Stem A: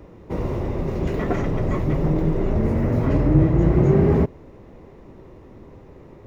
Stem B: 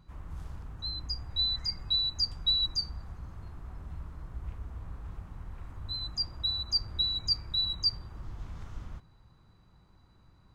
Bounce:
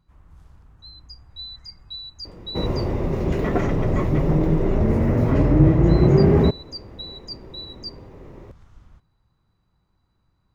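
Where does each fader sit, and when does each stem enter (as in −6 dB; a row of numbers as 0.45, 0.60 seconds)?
+1.5, −7.5 decibels; 2.25, 0.00 seconds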